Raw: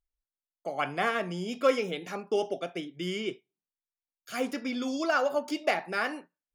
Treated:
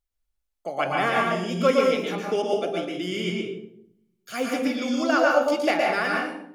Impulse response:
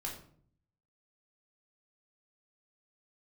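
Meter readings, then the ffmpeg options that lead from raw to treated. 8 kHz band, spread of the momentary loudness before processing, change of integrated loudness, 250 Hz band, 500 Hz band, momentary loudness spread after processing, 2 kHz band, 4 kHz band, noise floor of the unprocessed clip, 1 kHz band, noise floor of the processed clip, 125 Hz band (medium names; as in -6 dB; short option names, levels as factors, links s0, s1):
+6.0 dB, 10 LU, +6.5 dB, +7.5 dB, +7.0 dB, 11 LU, +6.5 dB, +6.0 dB, under -85 dBFS, +7.0 dB, -79 dBFS, +7.5 dB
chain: -filter_complex "[0:a]asplit=2[s0][s1];[1:a]atrim=start_sample=2205,asetrate=31311,aresample=44100,adelay=116[s2];[s1][s2]afir=irnorm=-1:irlink=0,volume=0.841[s3];[s0][s3]amix=inputs=2:normalize=0,volume=1.41"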